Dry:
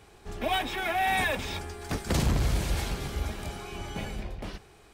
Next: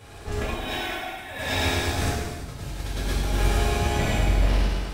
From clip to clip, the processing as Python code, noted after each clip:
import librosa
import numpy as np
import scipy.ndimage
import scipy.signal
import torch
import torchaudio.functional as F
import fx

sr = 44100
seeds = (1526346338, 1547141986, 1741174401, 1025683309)

y = fx.echo_feedback(x, sr, ms=106, feedback_pct=59, wet_db=-5)
y = fx.over_compress(y, sr, threshold_db=-33.0, ratio=-0.5)
y = fx.rev_gated(y, sr, seeds[0], gate_ms=470, shape='falling', drr_db=-7.0)
y = y * librosa.db_to_amplitude(-1.0)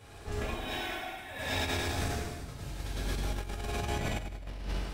y = fx.over_compress(x, sr, threshold_db=-24.0, ratio=-0.5)
y = y * librosa.db_to_amplitude(-8.5)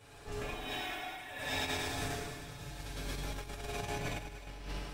y = fx.low_shelf(x, sr, hz=490.0, db=-3.0)
y = y + 0.48 * np.pad(y, (int(6.9 * sr / 1000.0), 0))[:len(y)]
y = fx.echo_thinned(y, sr, ms=306, feedback_pct=64, hz=420.0, wet_db=-14.5)
y = y * librosa.db_to_amplitude(-3.5)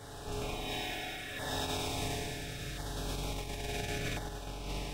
y = fx.bin_compress(x, sr, power=0.6)
y = fx.filter_lfo_notch(y, sr, shape='saw_down', hz=0.72, low_hz=840.0, high_hz=2600.0, q=1.2)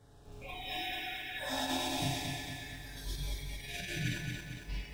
y = fx.noise_reduce_blind(x, sr, reduce_db=19)
y = fx.low_shelf(y, sr, hz=380.0, db=10.0)
y = fx.echo_crushed(y, sr, ms=227, feedback_pct=55, bits=10, wet_db=-4.5)